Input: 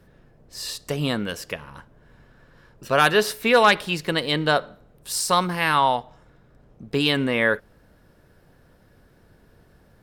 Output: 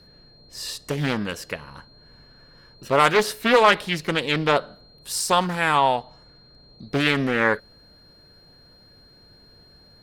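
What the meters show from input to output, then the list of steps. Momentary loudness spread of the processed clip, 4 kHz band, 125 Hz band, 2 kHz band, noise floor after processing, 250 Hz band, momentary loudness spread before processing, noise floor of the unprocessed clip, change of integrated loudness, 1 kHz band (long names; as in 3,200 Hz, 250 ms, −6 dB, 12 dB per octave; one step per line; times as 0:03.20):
15 LU, −1.5 dB, +0.5 dB, −0.5 dB, −53 dBFS, 0.0 dB, 14 LU, −57 dBFS, 0.0 dB, +0.5 dB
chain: steady tone 4,200 Hz −52 dBFS
highs frequency-modulated by the lows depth 0.41 ms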